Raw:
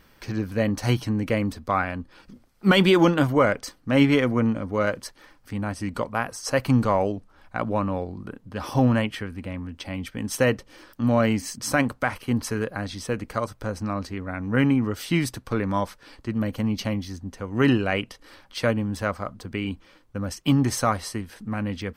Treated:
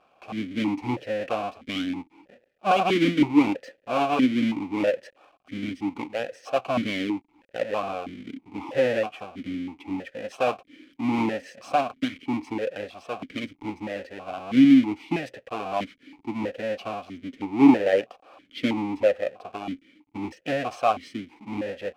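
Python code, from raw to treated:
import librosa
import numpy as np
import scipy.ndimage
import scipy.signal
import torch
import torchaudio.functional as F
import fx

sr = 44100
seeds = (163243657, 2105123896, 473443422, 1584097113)

y = fx.halfwave_hold(x, sr)
y = fx.peak_eq(y, sr, hz=600.0, db=4.0, octaves=2.1, at=(17.24, 19.5))
y = fx.vowel_held(y, sr, hz=3.1)
y = F.gain(torch.from_numpy(y), 5.5).numpy()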